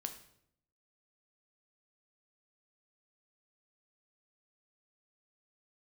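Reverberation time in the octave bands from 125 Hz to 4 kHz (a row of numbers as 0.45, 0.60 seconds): 0.95, 0.90, 0.80, 0.65, 0.60, 0.55 seconds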